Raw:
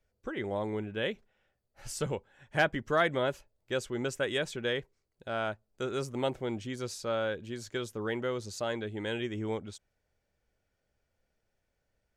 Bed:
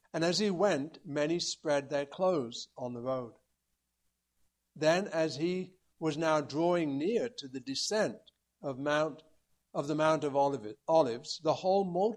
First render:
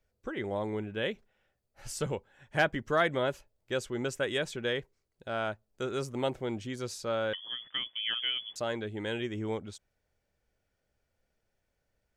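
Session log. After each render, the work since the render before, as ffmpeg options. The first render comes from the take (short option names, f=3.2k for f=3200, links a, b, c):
-filter_complex "[0:a]asettb=1/sr,asplit=3[a][b][c];[a]atrim=end=7.334[d];[b]atrim=start=7.33:end=8.56,asetpts=PTS-STARTPTS,afade=t=in:d=0.004:c=qsin,afade=t=out:st=1.226:d=0.004:c=qsin,lowpass=f=3k:t=q:w=0.5098,lowpass=f=3k:t=q:w=0.6013,lowpass=f=3k:t=q:w=0.9,lowpass=f=3k:t=q:w=2.563,afreqshift=-3500[e];[c]atrim=start=8.556[f];[d][e]acrossfade=d=0.004:c1=hsin:c2=qsin[g];[g][f]acrossfade=d=0.004:c1=qsin:c2=hsin"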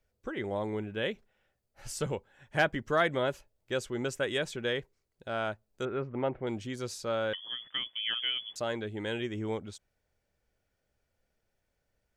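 -filter_complex "[0:a]asettb=1/sr,asplit=3[a][b][c];[a]atrim=end=5.854[d];[b]atrim=start=5.85:end=6.47,asetpts=PTS-STARTPTS,afade=t=in:d=0.004:c=qsin,afade=t=out:st=0.616:d=0.004:c=qsin,lowpass=f=2.3k:w=0.5412,lowpass=f=2.3k:w=1.3066[e];[c]atrim=start=6.466[f];[d][e]acrossfade=d=0.004:c1=hsin:c2=qsin[g];[g][f]acrossfade=d=0.004:c1=qsin:c2=hsin"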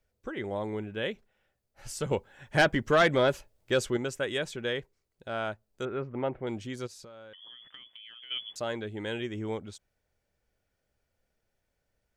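-filter_complex "[0:a]asettb=1/sr,asplit=3[a][b][c];[a]atrim=end=2.114[d];[b]atrim=start=2.11:end=3.97,asetpts=PTS-STARTPTS,afade=t=in:d=0.004:c=qsin,afade=t=out:st=1.856:d=0.004:c=qsin,aeval=exprs='0.168*sin(PI/2*1.41*val(0)/0.168)':c=same[e];[c]atrim=start=3.966[f];[d][e]acrossfade=d=0.004:c1=hsin:c2=qsin[g];[g][f]acrossfade=d=0.004:c1=qsin:c2=hsin,asplit=3[h][i][j];[h]afade=t=out:st=6.86:d=0.02[k];[i]acompressor=threshold=-45dB:ratio=12:attack=3.2:release=140:knee=1:detection=peak,afade=t=in:st=6.86:d=0.02,afade=t=out:st=8.3:d=0.02[l];[j]afade=t=in:st=8.3:d=0.02[m];[k][l][m]amix=inputs=3:normalize=0"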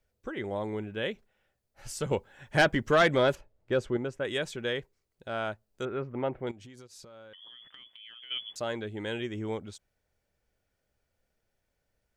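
-filter_complex "[0:a]asettb=1/sr,asplit=3[a][b][c];[a]atrim=end=3.354[d];[b]atrim=start=3.35:end=4.25,asetpts=PTS-STARTPTS,afade=t=in:d=0.004:c=qsin,afade=t=out:st=0.896:d=0.004:c=qsin,lowpass=f=1.2k:p=1[e];[c]atrim=start=4.246[f];[d][e]acrossfade=d=0.004:c1=hsin:c2=qsin[g];[g][f]acrossfade=d=0.004:c1=qsin:c2=hsin,asettb=1/sr,asplit=3[h][i][j];[h]atrim=end=6.514[k];[i]atrim=start=6.51:end=8.01,asetpts=PTS-STARTPTS,afade=t=in:d=0.004:c=qsin,afade=t=out:st=1.496:d=0.004:c=qsin,acompressor=threshold=-45dB:ratio=16:attack=3.2:release=140:knee=1:detection=peak[l];[j]atrim=start=8.006[m];[k][l]acrossfade=d=0.004:c1=hsin:c2=qsin[n];[n][m]acrossfade=d=0.004:c1=qsin:c2=hsin"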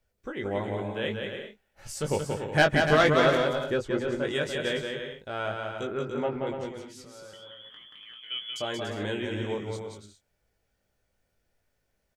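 -filter_complex "[0:a]asplit=2[a][b];[b]adelay=20,volume=-5.5dB[c];[a][c]amix=inputs=2:normalize=0,aecho=1:1:180|288|352.8|391.7|415:0.631|0.398|0.251|0.158|0.1"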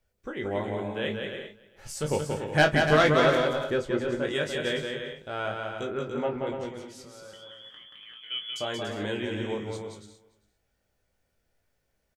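-filter_complex "[0:a]asplit=2[a][b];[b]adelay=33,volume=-12dB[c];[a][c]amix=inputs=2:normalize=0,aecho=1:1:398:0.0668"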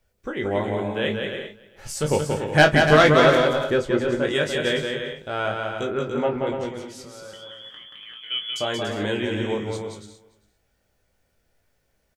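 -af "volume=6dB"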